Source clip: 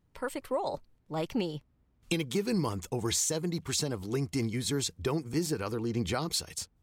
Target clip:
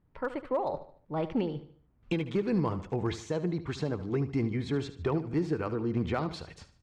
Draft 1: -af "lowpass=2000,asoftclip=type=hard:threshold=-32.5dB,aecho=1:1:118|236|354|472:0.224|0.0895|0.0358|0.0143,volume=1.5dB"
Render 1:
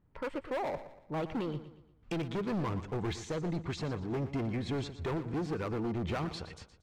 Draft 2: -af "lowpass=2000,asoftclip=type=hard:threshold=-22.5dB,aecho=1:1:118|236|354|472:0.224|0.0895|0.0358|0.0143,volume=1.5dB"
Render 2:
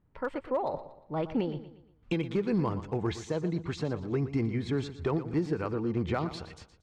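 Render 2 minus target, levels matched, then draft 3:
echo 44 ms late
-af "lowpass=2000,asoftclip=type=hard:threshold=-22.5dB,aecho=1:1:74|148|222|296:0.224|0.0895|0.0358|0.0143,volume=1.5dB"

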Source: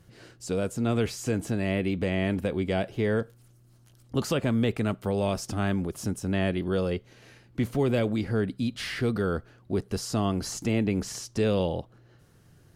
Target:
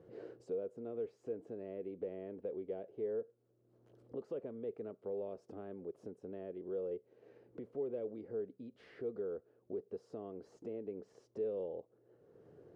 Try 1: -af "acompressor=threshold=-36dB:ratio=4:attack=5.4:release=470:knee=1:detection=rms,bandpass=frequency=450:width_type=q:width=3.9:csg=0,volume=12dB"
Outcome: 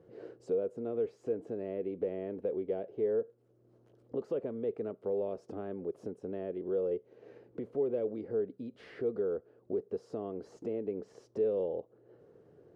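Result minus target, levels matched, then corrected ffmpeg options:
downward compressor: peak gain reduction −7.5 dB
-af "acompressor=threshold=-46dB:ratio=4:attack=5.4:release=470:knee=1:detection=rms,bandpass=frequency=450:width_type=q:width=3.9:csg=0,volume=12dB"

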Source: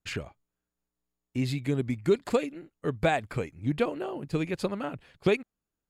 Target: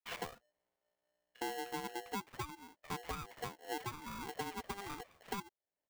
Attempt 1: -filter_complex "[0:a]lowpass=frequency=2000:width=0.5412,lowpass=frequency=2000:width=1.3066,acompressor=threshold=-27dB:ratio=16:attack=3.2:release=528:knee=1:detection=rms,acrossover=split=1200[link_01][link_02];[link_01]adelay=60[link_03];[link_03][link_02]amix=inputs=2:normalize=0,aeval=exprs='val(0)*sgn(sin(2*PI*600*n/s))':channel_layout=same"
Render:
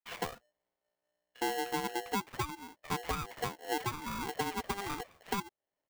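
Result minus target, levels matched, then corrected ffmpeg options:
downward compressor: peak gain reduction −7 dB
-filter_complex "[0:a]lowpass=frequency=2000:width=0.5412,lowpass=frequency=2000:width=1.3066,acompressor=threshold=-34.5dB:ratio=16:attack=3.2:release=528:knee=1:detection=rms,acrossover=split=1200[link_01][link_02];[link_01]adelay=60[link_03];[link_03][link_02]amix=inputs=2:normalize=0,aeval=exprs='val(0)*sgn(sin(2*PI*600*n/s))':channel_layout=same"

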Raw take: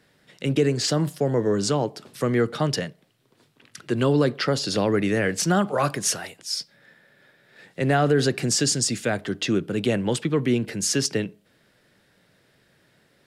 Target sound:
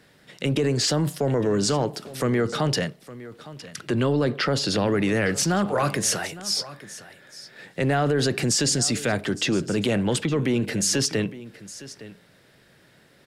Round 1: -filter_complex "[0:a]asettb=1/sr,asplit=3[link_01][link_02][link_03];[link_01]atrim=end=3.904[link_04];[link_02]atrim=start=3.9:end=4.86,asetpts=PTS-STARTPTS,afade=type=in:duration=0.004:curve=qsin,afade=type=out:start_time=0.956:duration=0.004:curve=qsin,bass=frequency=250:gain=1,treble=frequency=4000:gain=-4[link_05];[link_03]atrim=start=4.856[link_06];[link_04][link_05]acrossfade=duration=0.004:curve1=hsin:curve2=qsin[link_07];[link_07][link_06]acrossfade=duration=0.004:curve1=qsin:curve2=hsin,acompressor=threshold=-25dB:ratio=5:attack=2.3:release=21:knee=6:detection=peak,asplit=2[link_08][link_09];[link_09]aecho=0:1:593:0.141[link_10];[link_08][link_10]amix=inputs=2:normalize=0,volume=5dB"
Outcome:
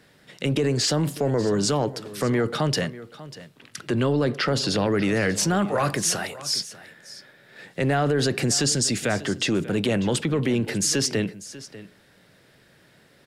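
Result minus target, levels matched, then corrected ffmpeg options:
echo 268 ms early
-filter_complex "[0:a]asettb=1/sr,asplit=3[link_01][link_02][link_03];[link_01]atrim=end=3.904[link_04];[link_02]atrim=start=3.9:end=4.86,asetpts=PTS-STARTPTS,afade=type=in:duration=0.004:curve=qsin,afade=type=out:start_time=0.956:duration=0.004:curve=qsin,bass=frequency=250:gain=1,treble=frequency=4000:gain=-4[link_05];[link_03]atrim=start=4.856[link_06];[link_04][link_05]acrossfade=duration=0.004:curve1=hsin:curve2=qsin[link_07];[link_07][link_06]acrossfade=duration=0.004:curve1=qsin:curve2=hsin,acompressor=threshold=-25dB:ratio=5:attack=2.3:release=21:knee=6:detection=peak,asplit=2[link_08][link_09];[link_09]aecho=0:1:861:0.141[link_10];[link_08][link_10]amix=inputs=2:normalize=0,volume=5dB"

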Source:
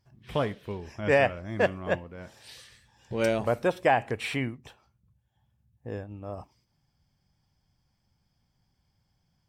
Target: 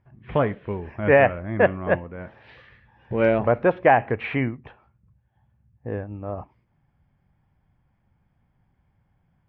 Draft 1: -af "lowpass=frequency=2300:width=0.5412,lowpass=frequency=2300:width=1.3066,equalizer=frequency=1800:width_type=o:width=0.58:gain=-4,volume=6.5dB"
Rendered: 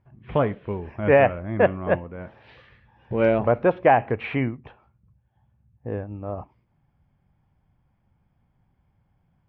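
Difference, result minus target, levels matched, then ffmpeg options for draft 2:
2,000 Hz band −2.5 dB
-af "lowpass=frequency=2300:width=0.5412,lowpass=frequency=2300:width=1.3066,volume=6.5dB"

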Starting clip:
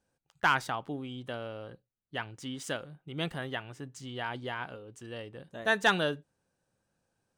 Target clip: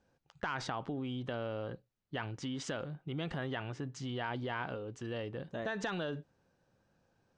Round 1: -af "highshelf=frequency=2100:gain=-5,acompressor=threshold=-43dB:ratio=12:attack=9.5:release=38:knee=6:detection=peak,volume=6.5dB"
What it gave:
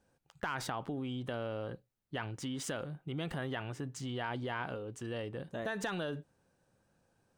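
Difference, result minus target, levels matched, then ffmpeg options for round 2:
8,000 Hz band +4.5 dB
-af "lowpass=frequency=6400:width=0.5412,lowpass=frequency=6400:width=1.3066,highshelf=frequency=2100:gain=-5,acompressor=threshold=-43dB:ratio=12:attack=9.5:release=38:knee=6:detection=peak,volume=6.5dB"

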